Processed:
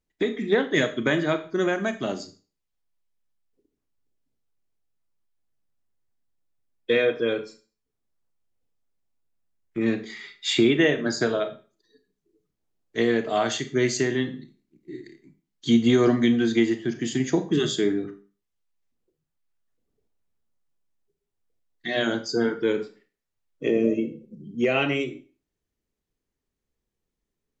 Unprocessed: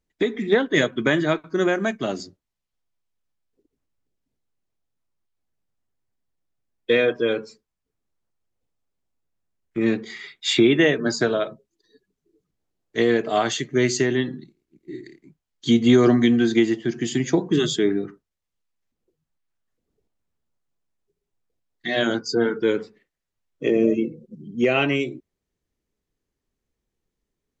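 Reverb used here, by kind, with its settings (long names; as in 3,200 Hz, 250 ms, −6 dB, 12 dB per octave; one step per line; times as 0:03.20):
four-comb reverb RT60 0.36 s, combs from 27 ms, DRR 9.5 dB
level −3 dB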